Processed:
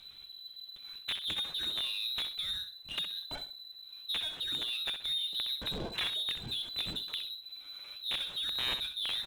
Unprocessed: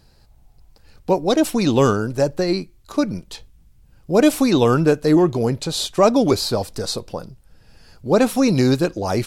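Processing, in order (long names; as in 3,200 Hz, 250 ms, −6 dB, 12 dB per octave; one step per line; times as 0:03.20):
downward compressor 10 to 1, threshold −25 dBFS, peak gain reduction 16.5 dB
flanger 0.31 Hz, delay 2.8 ms, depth 8.1 ms, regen +44%
wrap-around overflow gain 22.5 dB
voice inversion scrambler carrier 4,000 Hz
high-frequency loss of the air 95 metres
repeating echo 64 ms, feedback 20%, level −12 dB
power curve on the samples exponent 0.7
level −5 dB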